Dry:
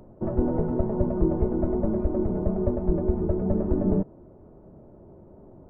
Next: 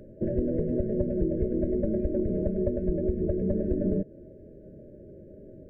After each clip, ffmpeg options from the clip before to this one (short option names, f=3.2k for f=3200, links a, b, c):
-af "afftfilt=real='re*(1-between(b*sr/4096,640,1500))':imag='im*(1-between(b*sr/4096,640,1500))':win_size=4096:overlap=0.75,equalizer=f=860:t=o:w=2.8:g=4.5,acompressor=threshold=-24dB:ratio=3"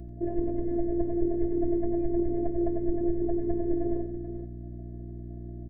-af "afftfilt=real='hypot(re,im)*cos(PI*b)':imag='0':win_size=512:overlap=0.75,aeval=exprs='val(0)+0.00891*(sin(2*PI*60*n/s)+sin(2*PI*2*60*n/s)/2+sin(2*PI*3*60*n/s)/3+sin(2*PI*4*60*n/s)/4+sin(2*PI*5*60*n/s)/5)':c=same,aecho=1:1:91|433:0.355|0.299,volume=1.5dB"